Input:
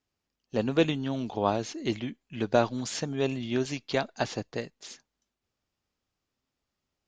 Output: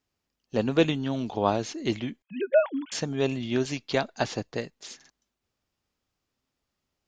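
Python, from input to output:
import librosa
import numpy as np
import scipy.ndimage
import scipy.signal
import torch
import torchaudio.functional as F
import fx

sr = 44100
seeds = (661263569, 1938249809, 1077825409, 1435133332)

y = fx.sine_speech(x, sr, at=(2.22, 2.92))
y = fx.buffer_glitch(y, sr, at_s=(4.96,), block=2048, repeats=2)
y = F.gain(torch.from_numpy(y), 2.0).numpy()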